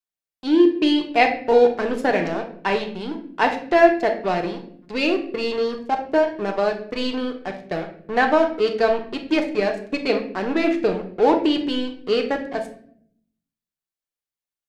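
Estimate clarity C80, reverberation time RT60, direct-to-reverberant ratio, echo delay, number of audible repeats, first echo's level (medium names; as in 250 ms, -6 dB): 14.0 dB, 0.60 s, 3.0 dB, no echo, no echo, no echo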